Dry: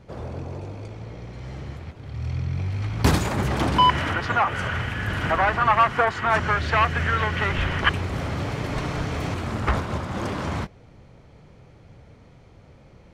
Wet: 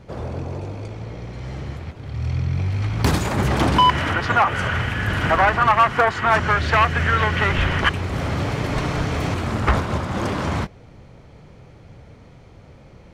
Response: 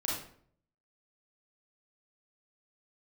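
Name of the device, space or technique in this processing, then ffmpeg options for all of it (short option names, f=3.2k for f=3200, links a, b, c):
limiter into clipper: -af "alimiter=limit=-10dB:level=0:latency=1:release=421,asoftclip=type=hard:threshold=-12.5dB,volume=4.5dB"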